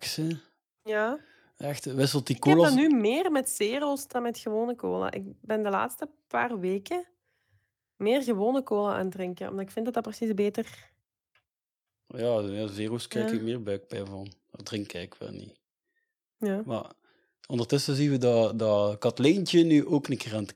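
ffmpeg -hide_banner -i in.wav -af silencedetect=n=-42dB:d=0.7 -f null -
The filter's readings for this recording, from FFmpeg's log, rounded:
silence_start: 7.03
silence_end: 8.01 | silence_duration: 0.98
silence_start: 10.81
silence_end: 12.10 | silence_duration: 1.30
silence_start: 15.49
silence_end: 16.41 | silence_duration: 0.93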